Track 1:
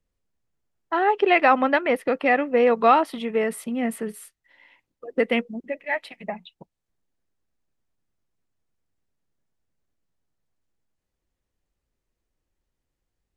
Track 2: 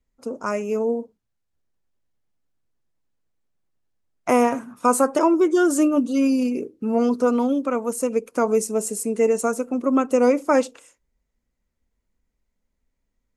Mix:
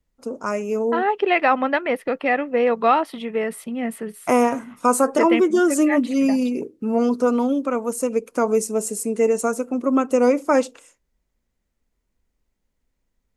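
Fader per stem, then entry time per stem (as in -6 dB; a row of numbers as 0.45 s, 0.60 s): -0.5 dB, +0.5 dB; 0.00 s, 0.00 s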